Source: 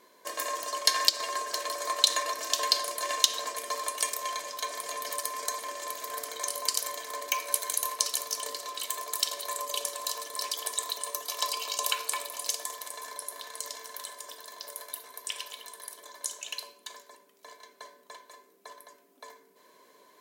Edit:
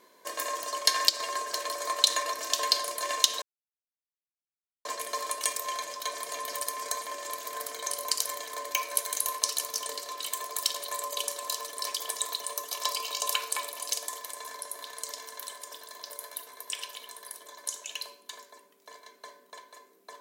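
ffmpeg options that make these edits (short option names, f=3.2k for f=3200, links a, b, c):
-filter_complex "[0:a]asplit=2[a][b];[a]atrim=end=3.42,asetpts=PTS-STARTPTS,afade=t=out:st=3.416:d=0.004:c=hsin,apad=pad_dur=1.43[c];[b]atrim=start=3.42,asetpts=PTS-STARTPTS,afade=t=in:d=0.004:c=hsin[d];[c][d]concat=n=2:v=0:a=1"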